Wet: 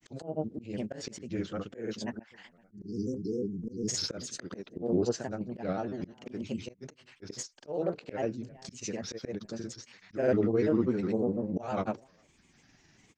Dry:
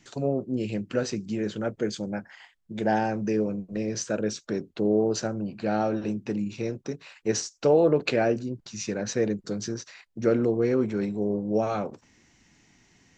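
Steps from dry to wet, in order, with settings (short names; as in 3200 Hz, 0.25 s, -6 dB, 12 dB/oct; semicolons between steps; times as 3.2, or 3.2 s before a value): spectral delete 2.54–3.97, 470–4600 Hz; outdoor echo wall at 70 m, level -30 dB; random-step tremolo, depth 55%; grains, pitch spread up and down by 3 st; auto swell 0.196 s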